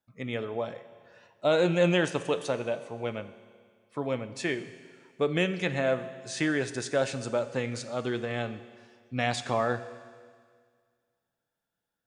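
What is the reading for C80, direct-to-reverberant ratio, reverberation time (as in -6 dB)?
14.0 dB, 11.5 dB, 1.9 s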